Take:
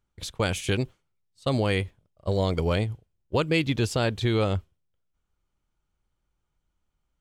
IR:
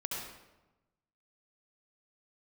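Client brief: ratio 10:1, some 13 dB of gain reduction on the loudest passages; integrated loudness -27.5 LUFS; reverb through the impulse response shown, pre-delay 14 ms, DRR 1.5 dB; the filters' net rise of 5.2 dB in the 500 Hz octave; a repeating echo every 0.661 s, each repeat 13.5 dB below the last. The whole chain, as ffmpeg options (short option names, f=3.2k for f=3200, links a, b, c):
-filter_complex "[0:a]equalizer=f=500:t=o:g=6,acompressor=threshold=-30dB:ratio=10,aecho=1:1:661|1322:0.211|0.0444,asplit=2[a][b];[1:a]atrim=start_sample=2205,adelay=14[c];[b][c]afir=irnorm=-1:irlink=0,volume=-4dB[d];[a][d]amix=inputs=2:normalize=0,volume=7dB"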